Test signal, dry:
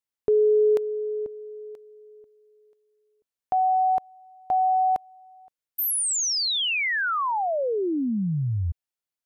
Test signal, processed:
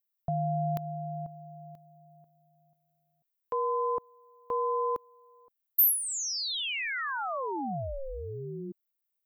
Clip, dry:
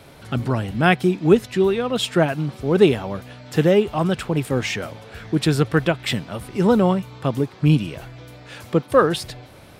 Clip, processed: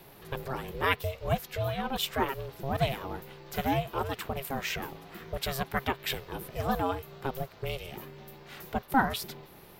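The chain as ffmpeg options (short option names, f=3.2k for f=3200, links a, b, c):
-filter_complex "[0:a]acrossover=split=450[a][b];[a]acompressor=threshold=-29dB:ratio=6:release=307:knee=1:detection=peak[c];[c][b]amix=inputs=2:normalize=0,aexciter=amount=3.5:drive=9.6:freq=12k,aeval=exprs='val(0)*sin(2*PI*270*n/s)':c=same,volume=-5dB"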